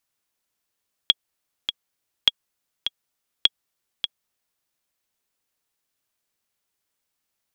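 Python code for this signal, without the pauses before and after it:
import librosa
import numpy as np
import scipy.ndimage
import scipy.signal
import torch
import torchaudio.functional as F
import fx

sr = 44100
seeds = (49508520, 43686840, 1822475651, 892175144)

y = fx.click_track(sr, bpm=102, beats=2, bars=3, hz=3320.0, accent_db=9.0, level_db=-1.5)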